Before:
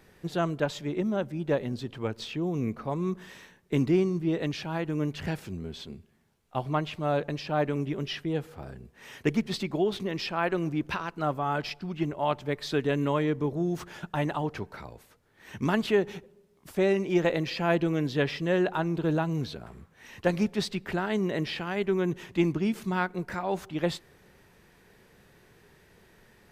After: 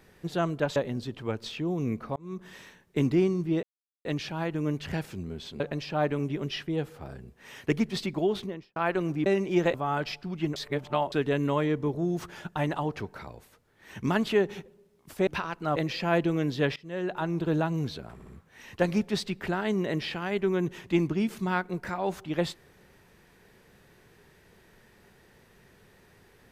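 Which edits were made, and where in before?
0.76–1.52 cut
2.92–3.31 fade in
4.39 insert silence 0.42 s
5.94–7.17 cut
9.9–10.33 studio fade out
10.83–11.32 swap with 16.85–17.33
12.14–12.7 reverse
18.33–18.94 fade in, from -24 dB
19.71 stutter 0.06 s, 3 plays

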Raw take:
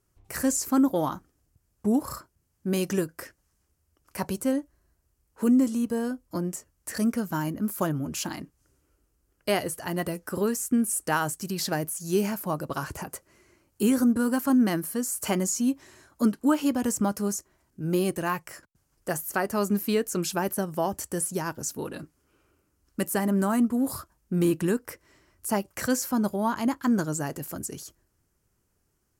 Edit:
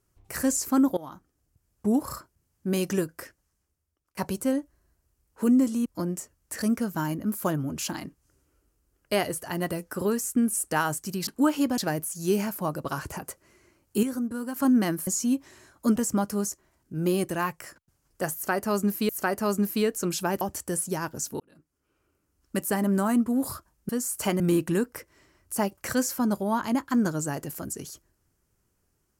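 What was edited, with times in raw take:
0.97–1.99 fade in equal-power, from -20 dB
3.1–4.17 fade out, to -23.5 dB
5.86–6.22 cut
13.88–14.41 gain -8 dB
14.92–15.43 move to 24.33
16.32–16.83 move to 11.63
19.21–19.96 loop, 2 plays
20.53–20.85 cut
21.84–23.07 fade in

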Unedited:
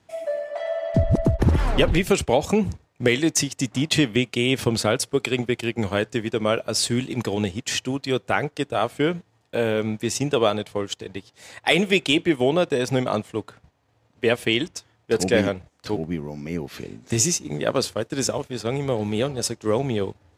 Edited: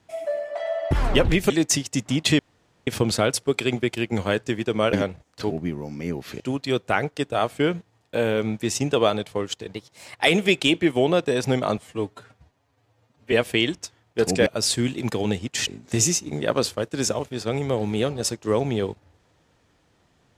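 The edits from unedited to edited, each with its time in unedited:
0.91–1.54 cut
2.13–3.16 cut
4.05–4.53 room tone
6.59–7.8 swap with 15.39–16.86
11.13–11.59 speed 110%
13.22–14.25 stretch 1.5×

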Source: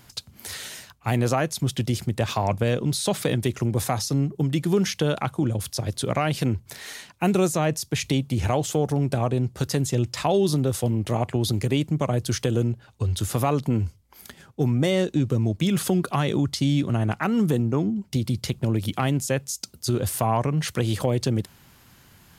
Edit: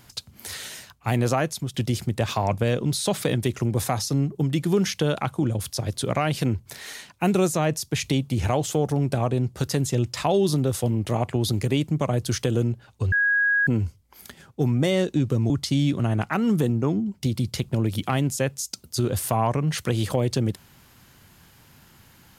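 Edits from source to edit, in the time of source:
1.47–1.74 fade out, to -10 dB
13.12–13.67 bleep 1650 Hz -17.5 dBFS
15.5–16.4 cut

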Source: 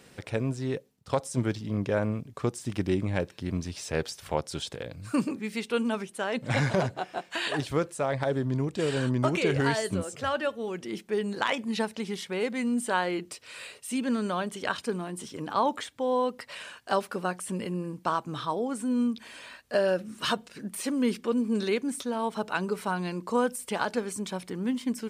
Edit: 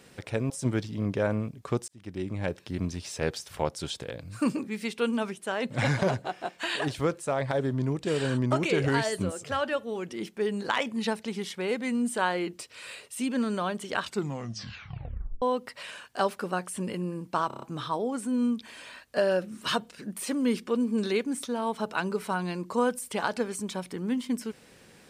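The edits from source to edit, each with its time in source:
0.5–1.22 cut
2.6–3.34 fade in
14.73 tape stop 1.41 s
18.19 stutter 0.03 s, 6 plays

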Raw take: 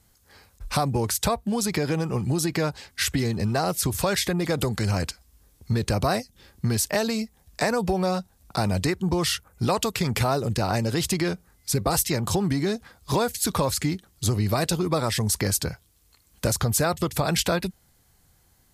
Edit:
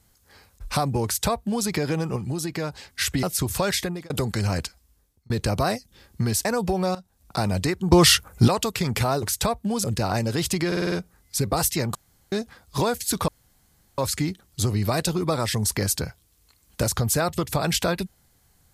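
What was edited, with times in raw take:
1.05–1.66 copy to 10.43
2.16–2.72 gain -4 dB
3.23–3.67 cut
4.22–4.54 fade out
5.08–5.74 fade out
6.89–7.65 cut
8.15–8.56 fade in, from -15.5 dB
9.12–9.68 gain +9.5 dB
11.26 stutter 0.05 s, 6 plays
12.29–12.66 room tone
13.62 insert room tone 0.70 s

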